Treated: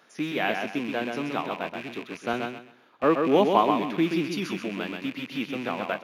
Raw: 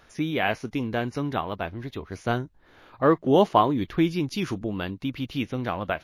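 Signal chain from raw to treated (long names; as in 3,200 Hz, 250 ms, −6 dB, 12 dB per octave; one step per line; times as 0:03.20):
loose part that buzzes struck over −39 dBFS, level −26 dBFS
high-pass filter 180 Hz 24 dB per octave
repeating echo 129 ms, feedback 31%, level −5 dB
0:02.33–0:03.04: multiband upward and downward expander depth 40%
level −2 dB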